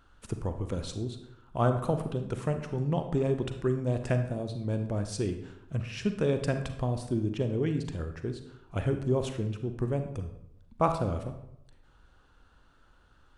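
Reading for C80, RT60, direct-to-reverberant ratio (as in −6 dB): 11.5 dB, 0.80 s, 7.0 dB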